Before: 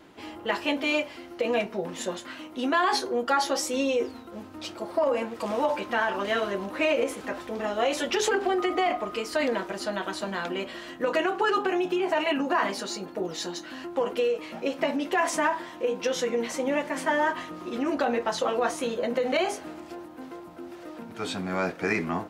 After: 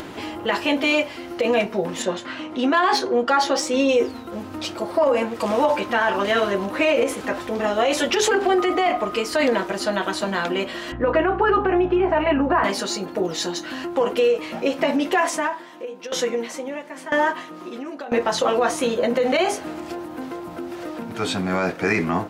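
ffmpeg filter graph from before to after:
-filter_complex "[0:a]asettb=1/sr,asplit=3[s0][s1][s2];[s0]atrim=end=2.024[s3];[s1]atrim=start=2.02:end=3.89,asetpts=PTS-STARTPTS,afade=t=in:d=0.004:c=qsin,afade=t=out:st=1.866:d=0.004:c=qsin,adynamicsmooth=sensitivity=2:basefreq=6300,highpass=69[s4];[s2]atrim=start=3.886[s5];[s3][s4]acrossfade=d=0.004:c1=hsin:c2=qsin[s6];[s6][s5]acrossfade=d=0.004:c1=qsin:c2=hsin,asettb=1/sr,asplit=3[s7][s8][s9];[s7]atrim=end=10.924[s10];[s8]atrim=start=10.92:end=12.64,asetpts=PTS-STARTPTS,afade=t=in:d=0.004:c=qsin,afade=t=out:st=1.716:d=0.004:c=qsin,lowpass=1800,aeval=exprs='val(0)+0.00794*(sin(2*PI*60*n/s)+sin(2*PI*2*60*n/s)/2+sin(2*PI*3*60*n/s)/3+sin(2*PI*4*60*n/s)/4+sin(2*PI*5*60*n/s)/5)':c=same[s11];[s9]atrim=start=12.636[s12];[s10][s11]acrossfade=d=0.004:c1=hsin:c2=qsin[s13];[s13][s12]acrossfade=d=0.004:c1=qsin:c2=hsin,asettb=1/sr,asplit=3[s14][s15][s16];[s14]atrim=end=15.124[s17];[s15]atrim=start=15.12:end=18.12,asetpts=PTS-STARTPTS,afade=t=in:d=0.004:c=qsin,afade=t=out:st=2.996:d=0.004:c=qsin,highpass=180,aeval=exprs='val(0)*pow(10,-20*if(lt(mod(1*n/s,1),2*abs(1)/1000),1-mod(1*n/s,1)/(2*abs(1)/1000),(mod(1*n/s,1)-2*abs(1)/1000)/(1-2*abs(1)/1000))/20)':c=same[s18];[s16]atrim=start=18.116[s19];[s17][s18]acrossfade=d=0.004:c1=hsin:c2=qsin[s20];[s20][s19]acrossfade=d=0.004:c1=qsin:c2=hsin,equalizer=f=110:t=o:w=0.36:g=4,acompressor=mode=upward:threshold=0.02:ratio=2.5,alimiter=level_in=6.31:limit=0.891:release=50:level=0:latency=1,volume=0.376"

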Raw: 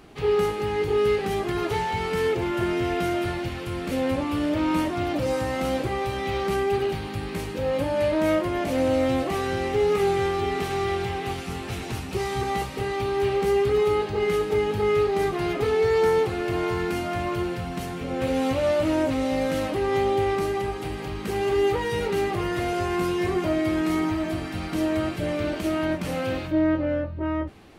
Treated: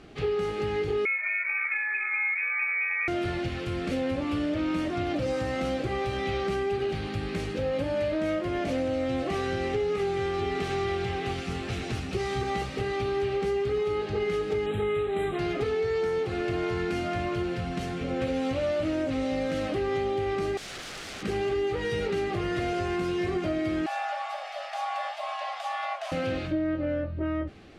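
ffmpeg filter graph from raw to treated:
-filter_complex "[0:a]asettb=1/sr,asplit=3[s0][s1][s2];[s0]atrim=end=1.054[s3];[s1]atrim=start=1.05:end=3.08,asetpts=PTS-STARTPTS,afade=t=in:d=0.004:c=qsin,afade=t=out:st=2.026:d=0.004:c=qsin,lowpass=f=2200:t=q:w=0.5098,lowpass=f=2200:t=q:w=0.6013,lowpass=f=2200:t=q:w=0.9,lowpass=f=2200:t=q:w=2.563,afreqshift=-2600,highpass=1100[s4];[s2]atrim=start=3.076[s5];[s3][s4]acrossfade=d=0.004:c1=hsin:c2=qsin[s6];[s6][s5]acrossfade=d=0.004:c1=qsin:c2=hsin,asettb=1/sr,asplit=3[s7][s8][s9];[s7]atrim=end=14.664[s10];[s8]atrim=start=14.66:end=15.39,asetpts=PTS-STARTPTS,afade=t=in:d=0.004:c=qsin,afade=t=out:st=0.726:d=0.004:c=qsin,asuperstop=centerf=5400:order=20:qfactor=1.7,highshelf=f=6200:g=6.5[s11];[s9]atrim=start=15.386[s12];[s10][s11]acrossfade=d=0.004:c1=hsin:c2=qsin[s13];[s13][s12]acrossfade=d=0.004:c1=qsin:c2=hsin,asettb=1/sr,asplit=3[s14][s15][s16];[s14]atrim=end=20.574[s17];[s15]atrim=start=20.57:end=21.23,asetpts=PTS-STARTPTS,afade=t=in:d=0.004:c=qsin,afade=t=out:st=0.656:d=0.004:c=qsin,highpass=110,aeval=exprs='(mod(44.7*val(0)+1,2)-1)/44.7':c=same[s18];[s16]atrim=start=21.226[s19];[s17][s18]acrossfade=d=0.004:c1=hsin:c2=qsin[s20];[s20][s19]acrossfade=d=0.004:c1=qsin:c2=hsin,asettb=1/sr,asplit=3[s21][s22][s23];[s21]atrim=end=23.864[s24];[s22]atrim=start=23.86:end=26.12,asetpts=PTS-STARTPTS,afade=t=in:d=0.004:c=qsin,afade=t=out:st=2.256:d=0.004:c=qsin,highpass=87,afreqshift=490,flanger=delay=5.5:depth=7.2:regen=69:speed=2:shape=triangular[s25];[s23]atrim=start=26.116[s26];[s24][s25]acrossfade=d=0.004:c1=hsin:c2=qsin[s27];[s27][s26]acrossfade=d=0.004:c1=qsin:c2=hsin,lowpass=6600,equalizer=f=950:w=5.5:g=-11,acompressor=threshold=0.0562:ratio=6"

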